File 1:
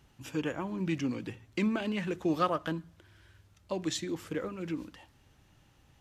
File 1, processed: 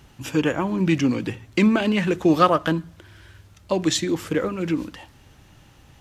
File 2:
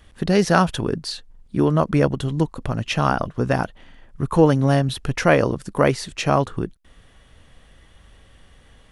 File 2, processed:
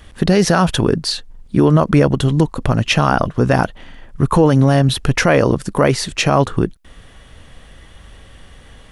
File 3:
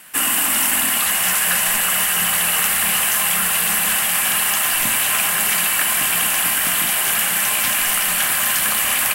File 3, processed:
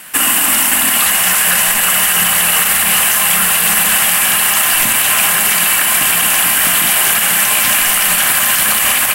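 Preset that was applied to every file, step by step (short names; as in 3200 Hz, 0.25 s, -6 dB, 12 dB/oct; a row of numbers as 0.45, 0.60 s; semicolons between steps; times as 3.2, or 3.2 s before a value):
limiter -11 dBFS; normalise peaks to -2 dBFS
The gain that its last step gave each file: +12.0, +9.0, +9.0 dB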